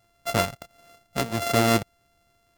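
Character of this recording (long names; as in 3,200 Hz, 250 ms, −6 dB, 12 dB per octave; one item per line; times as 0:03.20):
a buzz of ramps at a fixed pitch in blocks of 64 samples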